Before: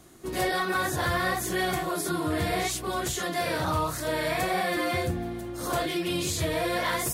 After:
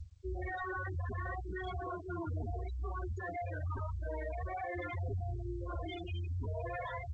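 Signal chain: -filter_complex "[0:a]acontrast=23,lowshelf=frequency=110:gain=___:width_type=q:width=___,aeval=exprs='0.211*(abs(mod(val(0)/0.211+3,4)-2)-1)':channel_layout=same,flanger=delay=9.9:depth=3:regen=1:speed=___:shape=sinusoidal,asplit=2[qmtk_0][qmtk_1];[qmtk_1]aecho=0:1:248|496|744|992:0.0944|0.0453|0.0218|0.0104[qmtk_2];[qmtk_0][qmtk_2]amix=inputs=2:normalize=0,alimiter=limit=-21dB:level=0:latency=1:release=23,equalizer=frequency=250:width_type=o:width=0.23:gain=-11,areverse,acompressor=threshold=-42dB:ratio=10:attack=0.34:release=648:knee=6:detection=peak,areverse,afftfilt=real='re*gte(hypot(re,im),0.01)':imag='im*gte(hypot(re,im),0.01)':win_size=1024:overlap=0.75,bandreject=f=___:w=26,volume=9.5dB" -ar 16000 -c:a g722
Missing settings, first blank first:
11.5, 3, 0.58, 5100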